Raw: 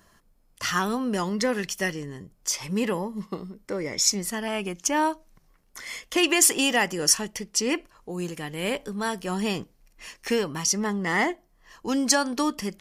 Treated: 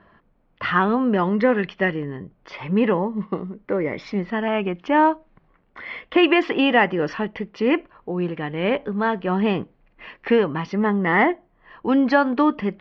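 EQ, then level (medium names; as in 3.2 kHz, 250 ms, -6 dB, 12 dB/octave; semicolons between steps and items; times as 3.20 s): Bessel low-pass 1.9 kHz, order 8; bass shelf 64 Hz -11.5 dB; +8.0 dB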